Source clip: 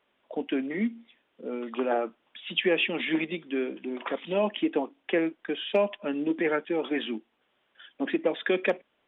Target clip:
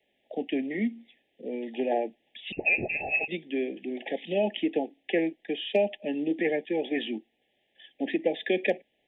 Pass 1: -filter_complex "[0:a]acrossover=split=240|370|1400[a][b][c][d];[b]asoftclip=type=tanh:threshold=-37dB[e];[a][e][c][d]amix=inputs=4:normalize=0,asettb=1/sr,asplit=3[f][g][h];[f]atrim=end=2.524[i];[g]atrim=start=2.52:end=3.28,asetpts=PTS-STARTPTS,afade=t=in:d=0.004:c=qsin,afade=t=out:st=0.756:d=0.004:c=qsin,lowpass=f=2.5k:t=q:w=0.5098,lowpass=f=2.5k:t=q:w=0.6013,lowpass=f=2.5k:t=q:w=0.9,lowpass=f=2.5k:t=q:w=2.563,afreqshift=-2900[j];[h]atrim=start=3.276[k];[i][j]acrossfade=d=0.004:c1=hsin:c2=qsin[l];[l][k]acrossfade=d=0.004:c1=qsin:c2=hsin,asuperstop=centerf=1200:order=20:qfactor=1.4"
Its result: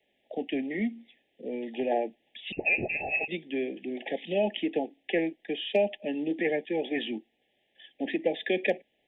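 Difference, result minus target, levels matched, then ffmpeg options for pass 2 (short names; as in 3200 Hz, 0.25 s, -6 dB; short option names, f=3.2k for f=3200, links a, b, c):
soft clip: distortion +12 dB
-filter_complex "[0:a]acrossover=split=240|370|1400[a][b][c][d];[b]asoftclip=type=tanh:threshold=-26dB[e];[a][e][c][d]amix=inputs=4:normalize=0,asettb=1/sr,asplit=3[f][g][h];[f]atrim=end=2.524[i];[g]atrim=start=2.52:end=3.28,asetpts=PTS-STARTPTS,afade=t=in:d=0.004:c=qsin,afade=t=out:st=0.756:d=0.004:c=qsin,lowpass=f=2.5k:t=q:w=0.5098,lowpass=f=2.5k:t=q:w=0.6013,lowpass=f=2.5k:t=q:w=0.9,lowpass=f=2.5k:t=q:w=2.563,afreqshift=-2900[j];[h]atrim=start=3.276[k];[i][j]acrossfade=d=0.004:c1=hsin:c2=qsin[l];[l][k]acrossfade=d=0.004:c1=qsin:c2=hsin,asuperstop=centerf=1200:order=20:qfactor=1.4"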